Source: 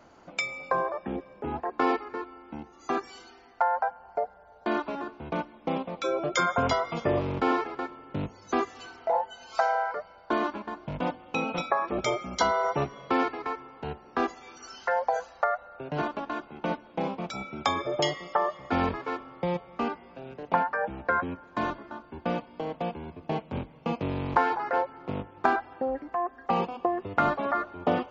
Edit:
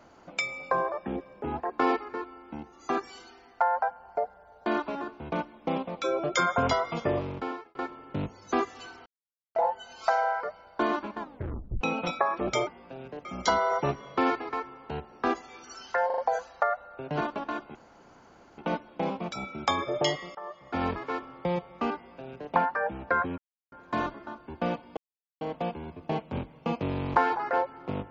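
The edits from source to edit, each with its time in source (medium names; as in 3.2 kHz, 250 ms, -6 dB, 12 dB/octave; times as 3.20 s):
6.96–7.75 s: fade out
9.06 s: insert silence 0.49 s
10.70 s: tape stop 0.62 s
14.99 s: stutter 0.04 s, 4 plays
16.56 s: insert room tone 0.83 s
18.33–19.05 s: fade in, from -20 dB
19.93–20.51 s: copy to 12.18 s
21.36 s: insert silence 0.34 s
22.61 s: insert silence 0.44 s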